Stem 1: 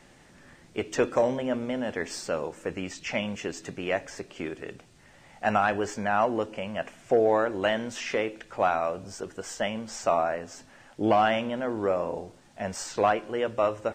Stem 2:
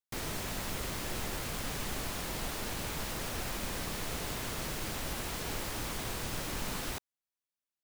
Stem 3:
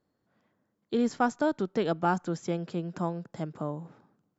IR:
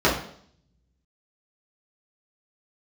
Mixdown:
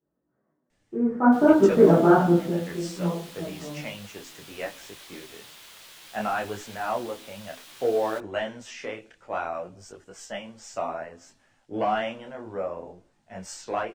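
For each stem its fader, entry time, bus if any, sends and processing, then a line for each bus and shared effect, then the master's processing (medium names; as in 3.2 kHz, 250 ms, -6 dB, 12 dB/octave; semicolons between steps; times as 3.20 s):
-2.0 dB, 0.70 s, no send, three bands expanded up and down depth 40%
-8.5 dB, 1.20 s, no send, high-pass 1.3 kHz 6 dB/octave; peaking EQ 3.4 kHz +6.5 dB 0.71 oct; level rider gain up to 4 dB
0.85 s -13.5 dB -> 1.42 s -0.5 dB -> 2.26 s -0.5 dB -> 2.64 s -11.5 dB -> 3.51 s -11.5 dB -> 3.80 s -20.5 dB, 0.00 s, send -8 dB, steep low-pass 2 kHz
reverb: on, RT60 0.60 s, pre-delay 3 ms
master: detune thickener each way 21 cents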